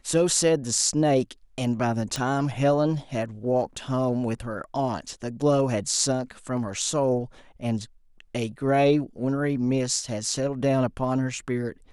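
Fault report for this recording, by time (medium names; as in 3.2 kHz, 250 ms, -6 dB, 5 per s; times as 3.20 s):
2.16 s: pop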